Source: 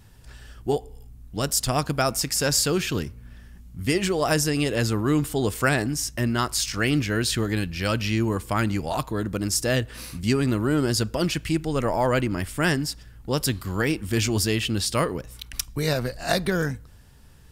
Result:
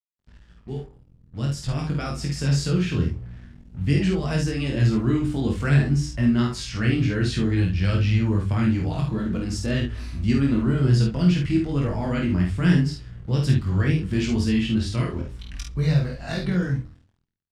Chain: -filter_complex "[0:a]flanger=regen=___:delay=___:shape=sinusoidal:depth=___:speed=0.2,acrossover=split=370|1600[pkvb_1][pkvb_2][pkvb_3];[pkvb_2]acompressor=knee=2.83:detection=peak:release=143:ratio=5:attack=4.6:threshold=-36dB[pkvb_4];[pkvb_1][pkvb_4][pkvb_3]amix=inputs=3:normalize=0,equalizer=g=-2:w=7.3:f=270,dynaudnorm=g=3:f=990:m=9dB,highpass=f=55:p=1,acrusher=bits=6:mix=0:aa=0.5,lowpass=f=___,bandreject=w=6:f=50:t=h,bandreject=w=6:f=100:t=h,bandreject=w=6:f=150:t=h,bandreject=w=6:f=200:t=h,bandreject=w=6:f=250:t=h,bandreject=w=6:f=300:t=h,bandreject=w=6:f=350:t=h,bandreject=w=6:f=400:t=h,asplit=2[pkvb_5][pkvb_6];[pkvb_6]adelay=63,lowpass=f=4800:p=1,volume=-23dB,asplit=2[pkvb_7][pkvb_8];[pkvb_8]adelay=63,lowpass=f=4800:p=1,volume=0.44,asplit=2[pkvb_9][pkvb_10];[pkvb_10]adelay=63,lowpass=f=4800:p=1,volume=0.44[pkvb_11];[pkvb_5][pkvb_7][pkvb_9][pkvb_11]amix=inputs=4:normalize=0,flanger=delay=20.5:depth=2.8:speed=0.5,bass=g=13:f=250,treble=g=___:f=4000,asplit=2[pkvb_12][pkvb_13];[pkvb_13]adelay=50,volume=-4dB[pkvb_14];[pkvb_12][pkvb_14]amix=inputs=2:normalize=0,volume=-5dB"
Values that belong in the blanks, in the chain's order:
-43, 3, 9, 6700, -6